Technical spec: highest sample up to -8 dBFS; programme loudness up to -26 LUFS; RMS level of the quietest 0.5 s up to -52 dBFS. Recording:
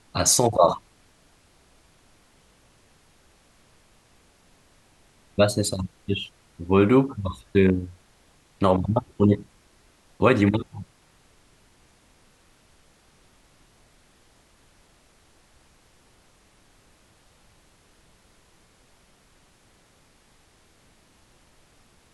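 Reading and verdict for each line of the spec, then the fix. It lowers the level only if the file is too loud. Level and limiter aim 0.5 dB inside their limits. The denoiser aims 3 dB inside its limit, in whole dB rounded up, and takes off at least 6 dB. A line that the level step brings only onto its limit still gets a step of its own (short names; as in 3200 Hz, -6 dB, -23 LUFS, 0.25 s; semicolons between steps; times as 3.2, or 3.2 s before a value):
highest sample -4.5 dBFS: fail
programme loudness -22.5 LUFS: fail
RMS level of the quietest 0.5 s -59 dBFS: OK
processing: gain -4 dB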